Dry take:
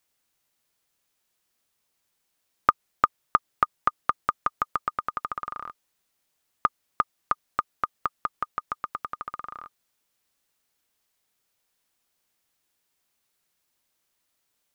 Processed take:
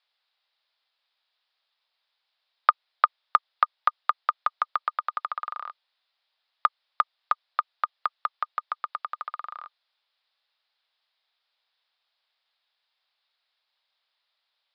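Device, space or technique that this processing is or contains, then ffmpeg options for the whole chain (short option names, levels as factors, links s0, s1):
musical greeting card: -af "aresample=11025,aresample=44100,highpass=f=620:w=0.5412,highpass=f=620:w=1.3066,equalizer=f=3700:t=o:w=0.43:g=7,volume=1.12"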